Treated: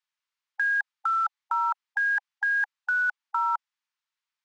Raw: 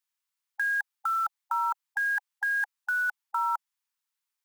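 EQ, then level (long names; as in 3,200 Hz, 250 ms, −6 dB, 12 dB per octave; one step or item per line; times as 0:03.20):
high-pass filter 830 Hz
high-frequency loss of the air 120 metres
+4.0 dB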